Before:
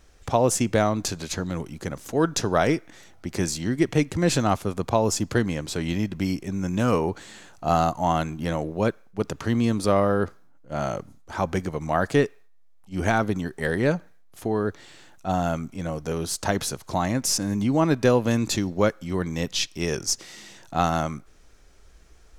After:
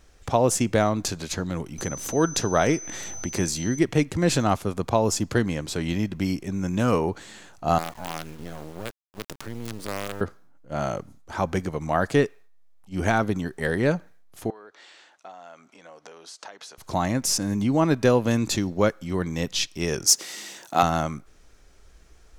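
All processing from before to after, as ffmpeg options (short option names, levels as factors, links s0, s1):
-filter_complex "[0:a]asettb=1/sr,asplit=3[s0][s1][s2];[s0]atrim=end=1.784[s3];[s1]atrim=start=1.78:end=3.79,asetpts=PTS-STARTPTS,afade=t=in:d=0.004:c=qsin,afade=t=out:st=2.006:d=0.004:c=qsin,acompressor=mode=upward:threshold=0.0631:ratio=2.5:attack=3.2:release=140:knee=2.83:detection=peak,aeval=exprs='val(0)+0.0158*sin(2*PI*6100*n/s)':c=same[s4];[s2]atrim=start=3.786[s5];[s3][s4]acrossfade=d=0.004:c1=hsin:c2=qsin[s6];[s6][s5]acrossfade=d=0.004:c1=qsin:c2=hsin,asettb=1/sr,asplit=3[s7][s8][s9];[s7]atrim=end=7.784[s10];[s8]atrim=start=7.78:end=10.21,asetpts=PTS-STARTPTS,afade=t=in:d=0.004:c=qsin,afade=t=out:st=2.426:d=0.004:c=qsin,highpass=f=94:w=0.5412,highpass=f=94:w=1.3066,acompressor=threshold=0.0224:ratio=2.5:attack=3.2:release=140:knee=1:detection=peak,acrusher=bits=5:dc=4:mix=0:aa=0.000001[s11];[s9]atrim=start=10.206[s12];[s10][s11]acrossfade=d=0.004:c1=hsin:c2=qsin[s13];[s13][s12]acrossfade=d=0.004:c1=qsin:c2=hsin,asettb=1/sr,asplit=3[s14][s15][s16];[s14]atrim=end=14.504[s17];[s15]atrim=start=14.5:end=16.78,asetpts=PTS-STARTPTS,afade=t=in:d=0.004:c=qsin,afade=t=out:st=2.276:d=0.004:c=qsin,acompressor=threshold=0.02:ratio=12:attack=3.2:release=140:knee=1:detection=peak,highpass=570,lowpass=6000[s18];[s16]atrim=start=16.776[s19];[s17][s18]acrossfade=d=0.004:c1=hsin:c2=qsin[s20];[s20][s19]acrossfade=d=0.004:c1=qsin:c2=hsin,asettb=1/sr,asplit=3[s21][s22][s23];[s21]atrim=end=20.064[s24];[s22]atrim=start=20.06:end=20.83,asetpts=PTS-STARTPTS,afade=t=in:d=0.004:c=qsin,afade=t=out:st=0.766:d=0.004:c=qsin,highshelf=f=9700:g=11,acontrast=20,highpass=270[s25];[s23]atrim=start=20.826[s26];[s24][s25]acrossfade=d=0.004:c1=hsin:c2=qsin[s27];[s27][s26]acrossfade=d=0.004:c1=qsin:c2=hsin"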